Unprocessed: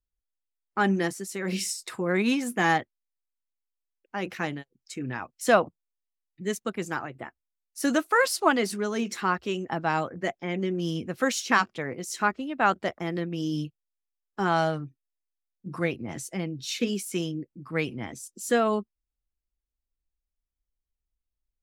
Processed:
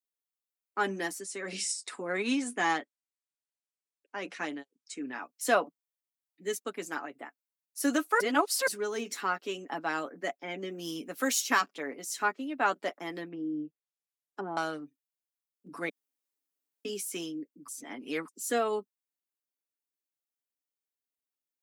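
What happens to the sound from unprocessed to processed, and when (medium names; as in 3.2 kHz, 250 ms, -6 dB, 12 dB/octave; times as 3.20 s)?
1.19–5.05 s: steep low-pass 10 kHz 72 dB/octave
8.20–8.67 s: reverse
10.69–11.61 s: treble shelf 8.8 kHz +10.5 dB
13.28–14.57 s: low-pass that closes with the level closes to 510 Hz, closed at -26.5 dBFS
15.89–16.85 s: room tone
17.68–18.28 s: reverse
whole clip: steep high-pass 220 Hz 36 dB/octave; treble shelf 8.4 kHz +8.5 dB; comb 7 ms, depth 52%; trim -5.5 dB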